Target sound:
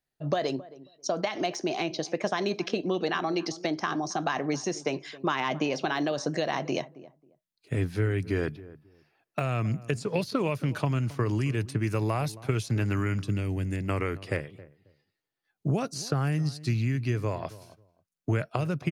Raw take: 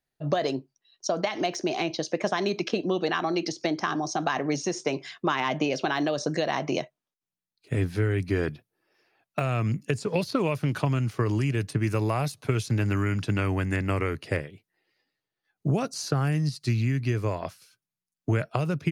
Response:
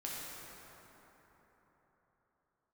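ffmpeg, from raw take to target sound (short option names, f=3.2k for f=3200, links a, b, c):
-filter_complex "[0:a]asettb=1/sr,asplit=3[a][b][c];[a]atrim=end=13.194[d];[b]atrim=start=13.19:end=13.89,asetpts=PTS-STARTPTS,afade=t=in:d=0.004:c=qsin,afade=t=out:st=0.696:d=0.004:c=qsin,equalizer=f=1.2k:w=0.69:g=-14[e];[c]atrim=start=13.886[f];[d][e]acrossfade=d=0.004:c1=hsin:c2=qsin[g];[g][f]acrossfade=d=0.004:c1=qsin:c2=hsin,asplit=2[h][i];[i]adelay=270,lowpass=f=870:p=1,volume=-17dB,asplit=2[j][k];[k]adelay=270,lowpass=f=870:p=1,volume=0.21[l];[h][j][l]amix=inputs=3:normalize=0,volume=-2dB"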